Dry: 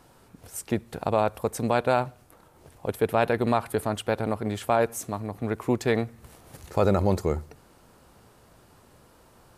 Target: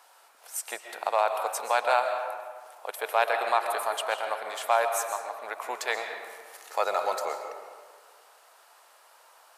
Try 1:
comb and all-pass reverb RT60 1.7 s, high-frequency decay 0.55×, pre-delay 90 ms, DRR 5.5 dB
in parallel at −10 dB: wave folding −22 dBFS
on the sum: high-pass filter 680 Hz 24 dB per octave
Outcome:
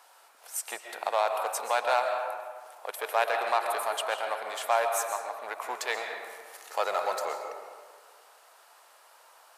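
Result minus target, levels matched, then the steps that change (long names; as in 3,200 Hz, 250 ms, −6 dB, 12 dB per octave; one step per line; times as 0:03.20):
wave folding: distortion +26 dB
change: wave folding −11.5 dBFS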